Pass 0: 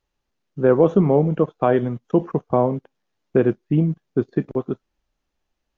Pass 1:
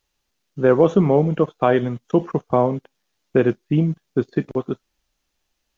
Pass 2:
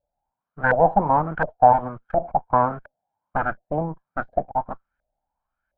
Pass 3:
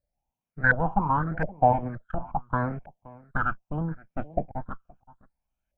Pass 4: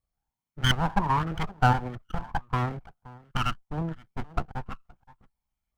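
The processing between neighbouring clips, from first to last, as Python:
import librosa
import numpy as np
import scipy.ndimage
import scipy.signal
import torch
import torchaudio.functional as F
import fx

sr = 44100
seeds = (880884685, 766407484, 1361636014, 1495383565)

y1 = fx.high_shelf(x, sr, hz=2200.0, db=11.5)
y2 = fx.lower_of_two(y1, sr, delay_ms=1.3)
y2 = fx.filter_lfo_lowpass(y2, sr, shape='saw_up', hz=1.4, low_hz=580.0, high_hz=1600.0, q=7.4)
y2 = F.gain(torch.from_numpy(y2), -6.5).numpy()
y3 = y2 + 10.0 ** (-22.0 / 20.0) * np.pad(y2, (int(522 * sr / 1000.0), 0))[:len(y2)]
y3 = fx.phaser_stages(y3, sr, stages=8, low_hz=550.0, high_hz=1400.0, hz=0.76, feedback_pct=45)
y4 = fx.lower_of_two(y3, sr, delay_ms=0.92)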